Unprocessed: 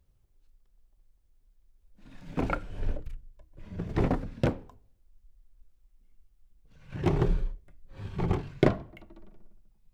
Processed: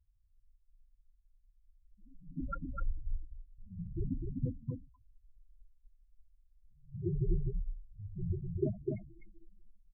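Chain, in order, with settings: loudest bins only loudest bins 4; echo 0.252 s -3.5 dB; gain -4.5 dB

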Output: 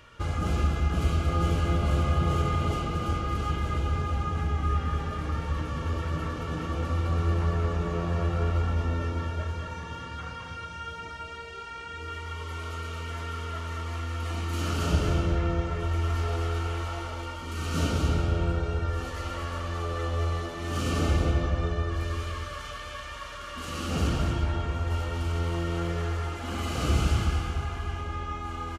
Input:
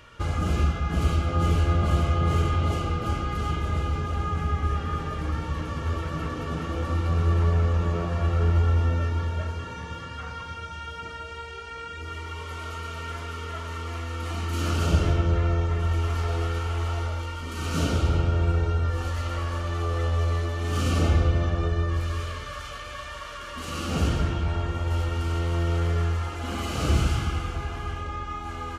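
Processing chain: echo 0.229 s -6 dB; gain -2.5 dB

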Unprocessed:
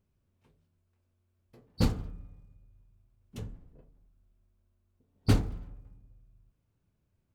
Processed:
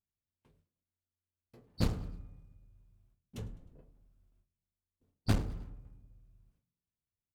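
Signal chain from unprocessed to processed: one-sided clip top -33.5 dBFS; gate with hold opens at -59 dBFS; frequency-shifting echo 0.103 s, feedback 47%, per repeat +44 Hz, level -21.5 dB; gain -1.5 dB

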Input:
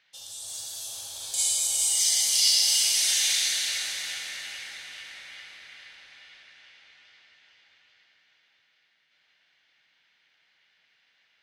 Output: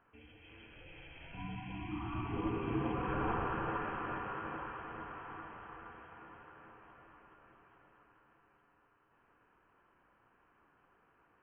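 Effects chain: inverted band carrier 3200 Hz; gain -1.5 dB

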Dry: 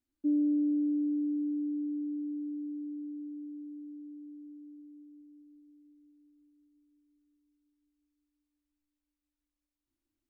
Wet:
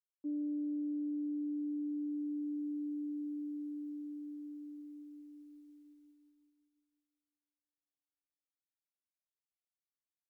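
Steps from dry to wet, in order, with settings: expander -59 dBFS; low shelf 340 Hz -11.5 dB; reverse; compressor 6:1, threshold -45 dBFS, peak gain reduction 12 dB; reverse; gain +8.5 dB

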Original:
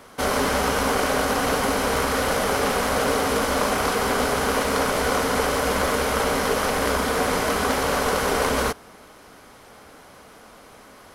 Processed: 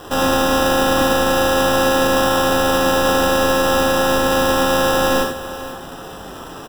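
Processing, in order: in parallel at +0.5 dB: limiter -15 dBFS, peak gain reduction 7.5 dB; on the sum: robotiser 266 Hz; requantised 6-bit, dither triangular; time stretch by phase-locked vocoder 0.6×; sample-and-hold 20×; on a send: echo 0.484 s -14.5 dB; on the sum: non-linear reverb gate 0.12 s flat, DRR -0.5 dB

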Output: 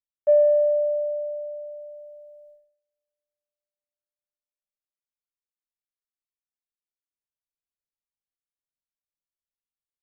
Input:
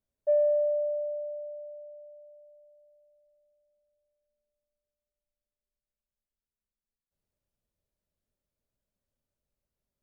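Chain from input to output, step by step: on a send: echo 0.146 s -15 dB; on the sum: gate -58 dBFS, range -30 dB; ending taper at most 110 dB/s; gain +7 dB

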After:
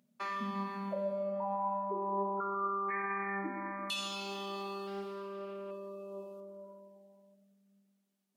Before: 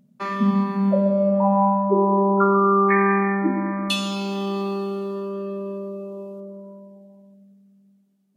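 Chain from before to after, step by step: HPF 960 Hz 6 dB/oct; limiter -19 dBFS, peak gain reduction 9 dB; compressor 1.5:1, threshold -40 dBFS, peak gain reduction 6 dB; flange 0.36 Hz, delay 7.9 ms, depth 5.2 ms, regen +83%; 4.87–5.71 Doppler distortion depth 0.22 ms; gain +1.5 dB

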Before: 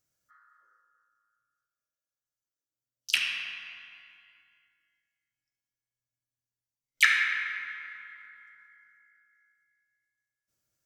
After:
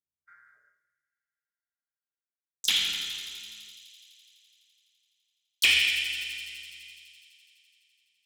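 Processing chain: speed glide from 110% -> 153%; expander -59 dBFS; tilt shelf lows +4.5 dB, about 670 Hz; in parallel at -5 dB: soft clip -25 dBFS, distortion -8 dB; on the sum: added harmonics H 5 -16 dB, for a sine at -10.5 dBFS; thin delay 84 ms, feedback 84%, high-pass 4500 Hz, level -8 dB; on a send at -7 dB: reverb RT60 0.45 s, pre-delay 3 ms

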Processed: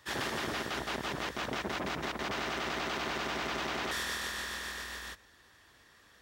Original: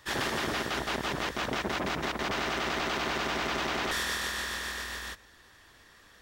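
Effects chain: HPF 47 Hz; gain -4 dB

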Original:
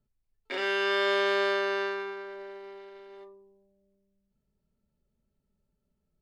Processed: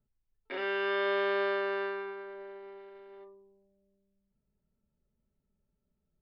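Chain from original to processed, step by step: air absorption 310 m; gain -2 dB

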